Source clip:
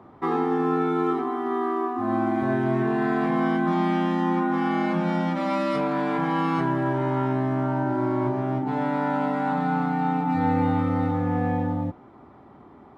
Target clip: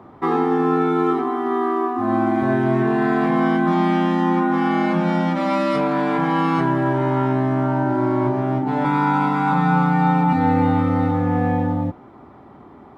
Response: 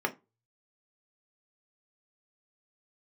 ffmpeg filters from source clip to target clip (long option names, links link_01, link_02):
-filter_complex "[0:a]asettb=1/sr,asplit=3[link_01][link_02][link_03];[link_01]atrim=end=8.844[link_04];[link_02]atrim=start=8.84:end=10.33,asetpts=PTS-STARTPTS,afade=type=in:duration=0.004:curve=qsin,afade=type=out:start_time=1.486:duration=0.004:curve=qsin,aecho=1:1:6:1,atrim=end_sample=65709[link_05];[link_03]atrim=start=10.326[link_06];[link_04][link_05]acrossfade=duration=0.004:curve1=hsin:curve2=qsin[link_07];[link_07][link_06]acrossfade=duration=0.004:curve1=qsin:curve2=hsin,volume=5dB"